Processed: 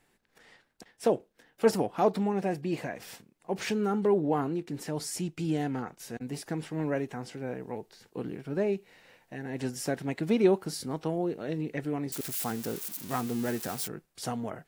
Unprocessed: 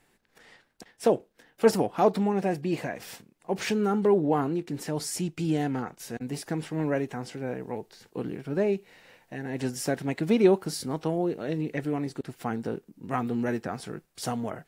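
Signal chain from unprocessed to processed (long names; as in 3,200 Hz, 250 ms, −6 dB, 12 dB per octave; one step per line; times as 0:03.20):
0:12.12–0:13.88: spike at every zero crossing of −25 dBFS
level −3 dB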